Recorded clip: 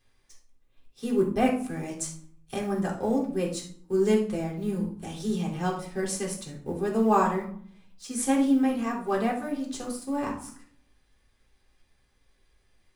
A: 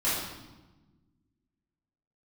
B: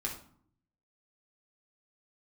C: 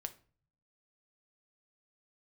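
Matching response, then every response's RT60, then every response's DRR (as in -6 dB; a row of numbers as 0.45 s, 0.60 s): B; 1.2 s, 0.55 s, 0.40 s; -11.5 dB, -3.0 dB, 8.0 dB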